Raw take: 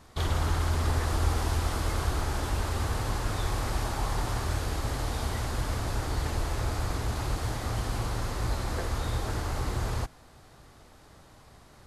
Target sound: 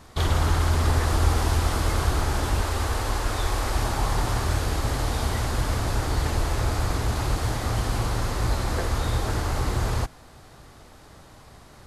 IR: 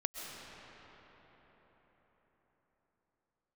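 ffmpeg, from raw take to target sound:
-filter_complex "[0:a]asettb=1/sr,asplit=3[a][b][c];[a]atrim=end=2.614[d];[b]atrim=start=2.61:end=3.76,asetpts=PTS-STARTPTS,afade=t=in:d=0.004:c=qsin,afade=t=out:st=1.146:d=0.004:c=qsin,equalizer=f=150:t=o:w=0.69:g=-14.5[e];[c]atrim=start=3.756[f];[d][e]acrossfade=d=0.004:c1=hsin:c2=qsin[g];[g][f]acrossfade=d=0.004:c1=qsin:c2=hsin,volume=5.5dB"

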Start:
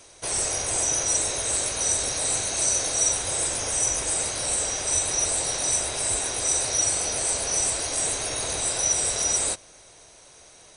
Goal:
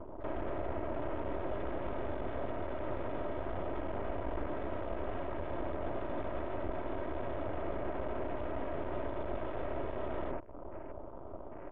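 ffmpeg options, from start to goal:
-af "aecho=1:1:2.9:0.59,aresample=8000,aeval=exprs='max(val(0),0)':c=same,aresample=44100,acompressor=threshold=-43dB:ratio=5,alimiter=level_in=14dB:limit=-24dB:level=0:latency=1:release=14,volume=-14dB,afwtdn=0.00126,lowpass=1k,asetrate=40517,aresample=44100,volume=14.5dB"

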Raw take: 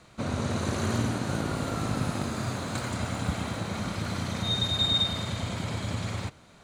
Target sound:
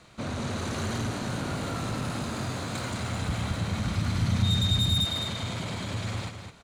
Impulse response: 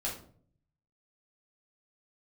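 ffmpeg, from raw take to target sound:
-filter_complex "[0:a]asoftclip=type=tanh:threshold=-26.5dB,equalizer=f=3.3k:t=o:w=1.7:g=2.5,aecho=1:1:211:0.422,asettb=1/sr,asplit=3[a][b][c];[a]atrim=end=2.954[d];[b]atrim=start=2.95:end=5.05,asetpts=PTS-STARTPTS,afade=t=in:d=0.004:c=qsin,afade=t=out:st=2.096:d=0.004:c=qsin,asubboost=boost=8.5:cutoff=200[e];[c]atrim=start=5.046[f];[d][e]acrossfade=d=0.004:c1=hsin:c2=qsin[g];[g][f]acrossfade=d=0.004:c1=qsin:c2=hsin"

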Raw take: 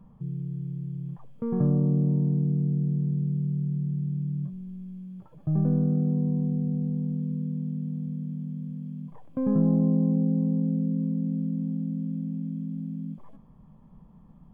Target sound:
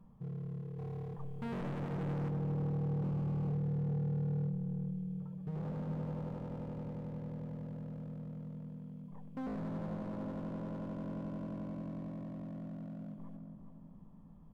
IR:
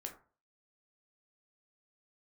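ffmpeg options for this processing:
-filter_complex "[0:a]asettb=1/sr,asplit=3[a][b][c];[a]atrim=end=3.024[d];[b]atrim=start=3.02:end=3.49,asetpts=PTS-STARTPTS,afade=t=in:d=0.004:c=qsin,afade=t=out:st=0.466:d=0.004:c=qsin,equalizer=f=240:w=0.67:g=13[e];[c]atrim=start=3.486[f];[d][e]acrossfade=d=0.004:c1=hsin:c2=qsin[g];[g][f]acrossfade=d=0.004:c1=qsin:c2=hsin,bandreject=f=50:t=h:w=6,bandreject=f=100:t=h:w=6,bandreject=f=150:t=h:w=6,bandreject=f=200:t=h:w=6,bandreject=f=250:t=h:w=6,alimiter=limit=-21dB:level=0:latency=1:release=15,asettb=1/sr,asplit=3[h][i][j];[h]atrim=end=0.784[k];[i]atrim=start=0.78:end=2.3,asetpts=PTS-STARTPTS,afade=t=in:d=0.004:c=qsin,afade=t=out:st=1.516:d=0.004:c=qsin,acontrast=69[l];[j]atrim=start=2.296[m];[k][l]acrossfade=d=0.004:c1=hsin:c2=qsin[n];[n][m]acrossfade=d=0.004:c1=qsin:c2=hsin,volume=32dB,asoftclip=hard,volume=-32dB,asplit=2[o][p];[p]adelay=412,lowpass=f=880:p=1,volume=-5dB,asplit=2[q][r];[r]adelay=412,lowpass=f=880:p=1,volume=0.49,asplit=2[s][t];[t]adelay=412,lowpass=f=880:p=1,volume=0.49,asplit=2[u][v];[v]adelay=412,lowpass=f=880:p=1,volume=0.49,asplit=2[w][x];[x]adelay=412,lowpass=f=880:p=1,volume=0.49,asplit=2[y][z];[z]adelay=412,lowpass=f=880:p=1,volume=0.49[aa];[o][q][s][u][w][y][aa]amix=inputs=7:normalize=0,volume=-6dB"

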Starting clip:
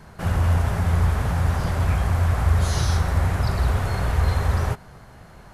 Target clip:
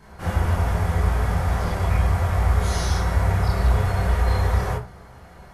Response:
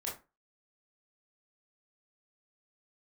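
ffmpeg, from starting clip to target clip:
-filter_complex "[1:a]atrim=start_sample=2205[a];[0:a][a]afir=irnorm=-1:irlink=0"

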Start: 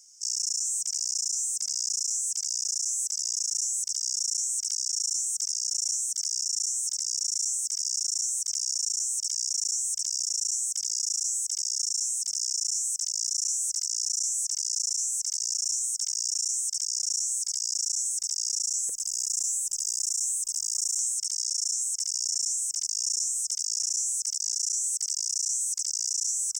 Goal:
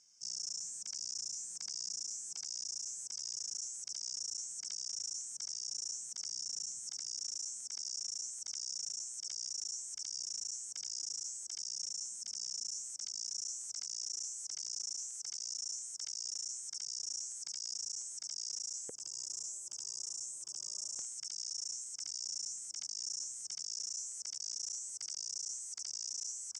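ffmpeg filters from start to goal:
-af "highpass=110,lowpass=4.6k,highshelf=f=2.6k:g=-11.5,volume=4.5dB"

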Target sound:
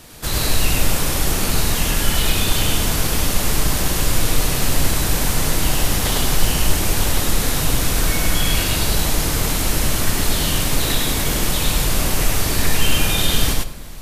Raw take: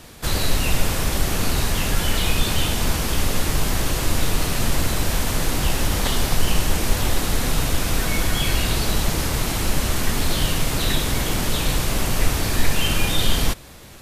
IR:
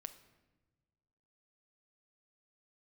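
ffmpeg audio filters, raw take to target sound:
-filter_complex "[0:a]highshelf=f=5.9k:g=5.5,asplit=2[a][b];[1:a]atrim=start_sample=2205,adelay=102[c];[b][c]afir=irnorm=-1:irlink=0,volume=4dB[d];[a][d]amix=inputs=2:normalize=0,volume=-1dB"

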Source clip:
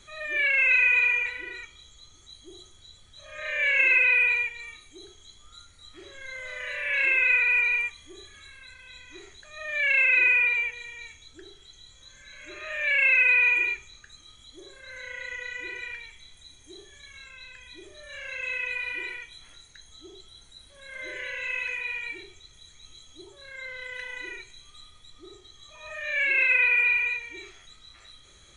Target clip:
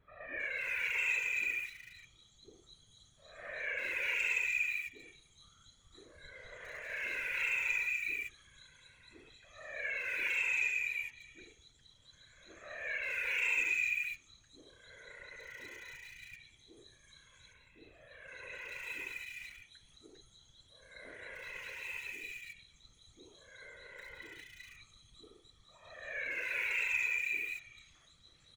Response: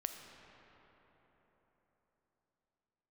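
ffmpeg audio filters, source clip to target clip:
-filter_complex "[0:a]asettb=1/sr,asplit=3[a][b][c];[a]atrim=end=17.134[d];[b]atrim=start=17.13:end=17.88,asetpts=PTS-STARTPTS,afade=t=in:d=0.004:c=qsin,afade=t=out:st=0.746:d=0.004:c=qsin,equalizer=f=5.9k:w=0.74:g=-11.5[e];[c]atrim=start=17.876[f];[d][e]acrossfade=d=0.004:c1=hsin:c2=qsin[g];[g][f]acrossfade=d=0.004:c1=qsin:c2=hsin,asplit=2[h][i];[i]aeval=exprs='val(0)*gte(abs(val(0)),0.0266)':c=same,volume=-8dB[j];[h][j]amix=inputs=2:normalize=0,asettb=1/sr,asplit=3[k][l][m];[k]atrim=end=9.974[n];[l]atrim=start=9.97:end=10.76,asetpts=PTS-STARTPTS,afade=t=in:d=0.004:c=qsin,afade=t=out:st=0.786:d=0.004:c=qsin,adynamicsmooth=sensitivity=6.5:basefreq=7.2k[o];[m]atrim=start=10.756[p];[n][o]acrossfade=d=0.004:c1=hsin:c2=qsin[q];[q][p]acrossfade=d=0.004:c1=qsin:c2=hsin,asoftclip=type=tanh:threshold=-12dB,afftfilt=real='hypot(re,im)*cos(2*PI*random(0))':imag='hypot(re,im)*sin(2*PI*random(1))':win_size=512:overlap=0.75,acrossover=split=2100[r][s];[s]adelay=400[t];[r][t]amix=inputs=2:normalize=0,volume=-5dB"

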